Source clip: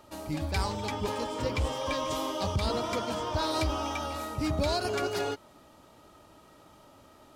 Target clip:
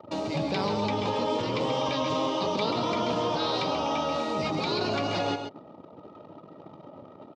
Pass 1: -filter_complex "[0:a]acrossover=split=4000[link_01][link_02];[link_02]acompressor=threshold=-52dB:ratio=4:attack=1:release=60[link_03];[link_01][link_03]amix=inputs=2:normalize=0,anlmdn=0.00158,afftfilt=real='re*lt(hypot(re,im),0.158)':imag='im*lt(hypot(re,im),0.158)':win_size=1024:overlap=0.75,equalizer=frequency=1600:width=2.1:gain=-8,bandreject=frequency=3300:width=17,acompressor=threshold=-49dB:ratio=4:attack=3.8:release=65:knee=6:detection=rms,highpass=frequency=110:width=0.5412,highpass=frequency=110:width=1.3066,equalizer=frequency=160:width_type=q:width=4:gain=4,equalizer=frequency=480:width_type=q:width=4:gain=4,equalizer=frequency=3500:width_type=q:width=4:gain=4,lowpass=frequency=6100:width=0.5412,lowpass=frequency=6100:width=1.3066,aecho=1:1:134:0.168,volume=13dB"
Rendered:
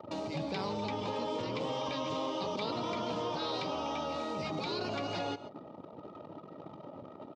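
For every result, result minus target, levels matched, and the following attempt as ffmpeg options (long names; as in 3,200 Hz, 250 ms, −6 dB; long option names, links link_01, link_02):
downward compressor: peak gain reduction +7 dB; echo-to-direct −8.5 dB
-filter_complex "[0:a]acrossover=split=4000[link_01][link_02];[link_02]acompressor=threshold=-52dB:ratio=4:attack=1:release=60[link_03];[link_01][link_03]amix=inputs=2:normalize=0,anlmdn=0.00158,afftfilt=real='re*lt(hypot(re,im),0.158)':imag='im*lt(hypot(re,im),0.158)':win_size=1024:overlap=0.75,equalizer=frequency=1600:width=2.1:gain=-8,bandreject=frequency=3300:width=17,acompressor=threshold=-39.5dB:ratio=4:attack=3.8:release=65:knee=6:detection=rms,highpass=frequency=110:width=0.5412,highpass=frequency=110:width=1.3066,equalizer=frequency=160:width_type=q:width=4:gain=4,equalizer=frequency=480:width_type=q:width=4:gain=4,equalizer=frequency=3500:width_type=q:width=4:gain=4,lowpass=frequency=6100:width=0.5412,lowpass=frequency=6100:width=1.3066,aecho=1:1:134:0.168,volume=13dB"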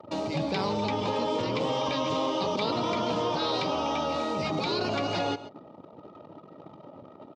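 echo-to-direct −8.5 dB
-filter_complex "[0:a]acrossover=split=4000[link_01][link_02];[link_02]acompressor=threshold=-52dB:ratio=4:attack=1:release=60[link_03];[link_01][link_03]amix=inputs=2:normalize=0,anlmdn=0.00158,afftfilt=real='re*lt(hypot(re,im),0.158)':imag='im*lt(hypot(re,im),0.158)':win_size=1024:overlap=0.75,equalizer=frequency=1600:width=2.1:gain=-8,bandreject=frequency=3300:width=17,acompressor=threshold=-39.5dB:ratio=4:attack=3.8:release=65:knee=6:detection=rms,highpass=frequency=110:width=0.5412,highpass=frequency=110:width=1.3066,equalizer=frequency=160:width_type=q:width=4:gain=4,equalizer=frequency=480:width_type=q:width=4:gain=4,equalizer=frequency=3500:width_type=q:width=4:gain=4,lowpass=frequency=6100:width=0.5412,lowpass=frequency=6100:width=1.3066,aecho=1:1:134:0.447,volume=13dB"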